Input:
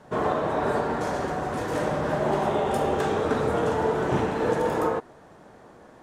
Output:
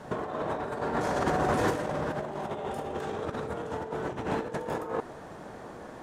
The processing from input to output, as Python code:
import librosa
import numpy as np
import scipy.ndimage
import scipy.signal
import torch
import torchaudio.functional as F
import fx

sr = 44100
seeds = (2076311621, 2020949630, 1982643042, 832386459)

y = fx.over_compress(x, sr, threshold_db=-30.0, ratio=-0.5)